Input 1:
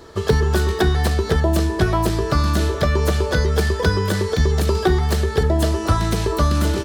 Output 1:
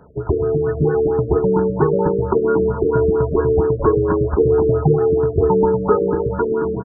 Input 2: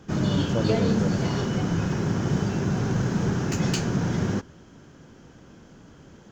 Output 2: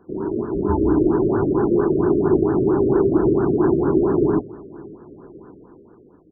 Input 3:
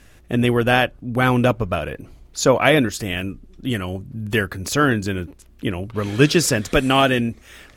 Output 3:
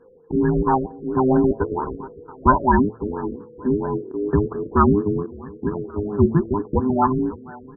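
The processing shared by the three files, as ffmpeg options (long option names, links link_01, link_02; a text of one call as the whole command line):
ffmpeg -i in.wav -filter_complex "[0:a]afftfilt=real='real(if(between(b,1,1008),(2*floor((b-1)/24)+1)*24-b,b),0)':imag='imag(if(between(b,1,1008),(2*floor((b-1)/24)+1)*24-b,b),0)*if(between(b,1,1008),-1,1)':win_size=2048:overlap=0.75,highpass=frequency=50:poles=1,bandreject=frequency=111.8:width_type=h:width=4,bandreject=frequency=223.6:width_type=h:width=4,bandreject=frequency=335.4:width_type=h:width=4,bandreject=frequency=447.2:width_type=h:width=4,bandreject=frequency=559:width_type=h:width=4,bandreject=frequency=670.8:width_type=h:width=4,bandreject=frequency=782.6:width_type=h:width=4,dynaudnorm=framelen=150:gausssize=11:maxgain=9dB,asplit=2[link_01][link_02];[link_02]adelay=561,lowpass=frequency=4200:poles=1,volume=-19dB,asplit=2[link_03][link_04];[link_04]adelay=561,lowpass=frequency=4200:poles=1,volume=0.44,asplit=2[link_05][link_06];[link_06]adelay=561,lowpass=frequency=4200:poles=1,volume=0.44[link_07];[link_01][link_03][link_05][link_07]amix=inputs=4:normalize=0,asplit=2[link_08][link_09];[link_09]aeval=exprs='val(0)*gte(abs(val(0)),0.0668)':channel_layout=same,volume=-10dB[link_10];[link_08][link_10]amix=inputs=2:normalize=0,afftfilt=real='re*lt(b*sr/1024,590*pow(1800/590,0.5+0.5*sin(2*PI*4.4*pts/sr)))':imag='im*lt(b*sr/1024,590*pow(1800/590,0.5+0.5*sin(2*PI*4.4*pts/sr)))':win_size=1024:overlap=0.75,volume=-3dB" out.wav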